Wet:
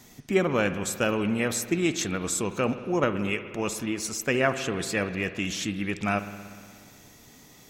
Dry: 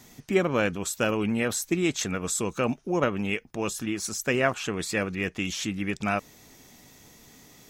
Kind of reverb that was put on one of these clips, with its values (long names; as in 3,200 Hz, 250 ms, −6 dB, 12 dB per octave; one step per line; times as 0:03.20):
spring reverb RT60 2.1 s, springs 59 ms, chirp 20 ms, DRR 10.5 dB